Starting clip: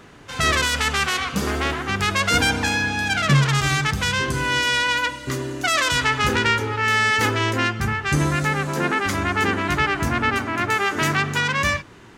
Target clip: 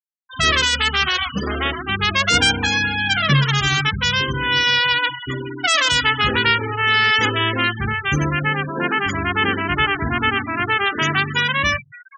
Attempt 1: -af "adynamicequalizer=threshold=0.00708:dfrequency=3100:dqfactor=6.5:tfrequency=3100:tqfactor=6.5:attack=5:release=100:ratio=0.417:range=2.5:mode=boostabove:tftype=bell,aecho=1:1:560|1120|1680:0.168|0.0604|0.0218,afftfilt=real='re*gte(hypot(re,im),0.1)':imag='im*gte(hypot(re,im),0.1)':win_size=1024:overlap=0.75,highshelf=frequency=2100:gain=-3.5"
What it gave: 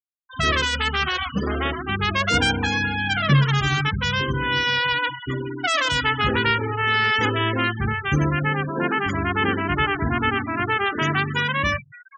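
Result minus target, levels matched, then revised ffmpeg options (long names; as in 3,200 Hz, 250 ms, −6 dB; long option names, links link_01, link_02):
4,000 Hz band −3.0 dB
-af "adynamicequalizer=threshold=0.00708:dfrequency=3100:dqfactor=6.5:tfrequency=3100:tqfactor=6.5:attack=5:release=100:ratio=0.417:range=2.5:mode=boostabove:tftype=bell,aecho=1:1:560|1120|1680:0.168|0.0604|0.0218,afftfilt=real='re*gte(hypot(re,im),0.1)':imag='im*gte(hypot(re,im),0.1)':win_size=1024:overlap=0.75,highshelf=frequency=2100:gain=6"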